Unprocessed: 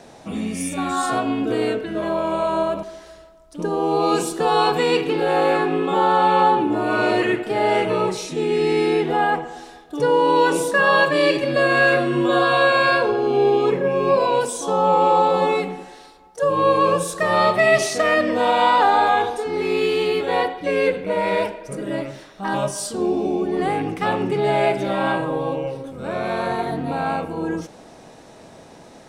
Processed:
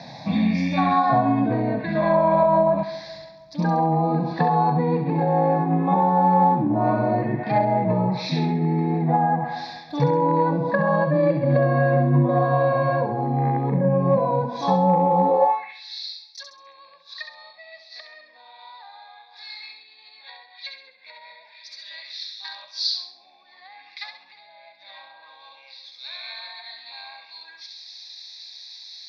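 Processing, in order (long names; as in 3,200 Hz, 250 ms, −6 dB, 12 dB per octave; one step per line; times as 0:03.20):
treble cut that deepens with the level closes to 530 Hz, closed at −16 dBFS
harmonic generator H 3 −22 dB, 5 −33 dB, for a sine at −9.5 dBFS
dynamic equaliser 1,300 Hz, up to +4 dB, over −41 dBFS, Q 1.5
high-pass filter sweep 140 Hz → 4,000 Hz, 0:15.17–0:15.78
high shelf with overshoot 6,100 Hz −12.5 dB, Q 3
phaser with its sweep stopped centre 2,000 Hz, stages 8
delay with a high-pass on its return 67 ms, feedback 39%, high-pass 1,400 Hz, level −6 dB
level +7 dB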